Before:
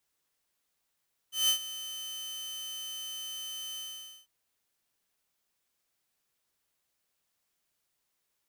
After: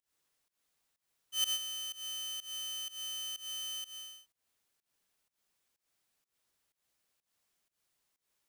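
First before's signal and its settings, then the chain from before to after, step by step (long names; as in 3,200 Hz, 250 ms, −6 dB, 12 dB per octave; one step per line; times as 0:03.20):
note with an ADSR envelope saw 3,060 Hz, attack 168 ms, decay 93 ms, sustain −15.5 dB, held 2.46 s, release 486 ms −19.5 dBFS
parametric band 15,000 Hz −6 dB 0.2 octaves
fake sidechain pumping 125 BPM, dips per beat 1, −21 dB, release 189 ms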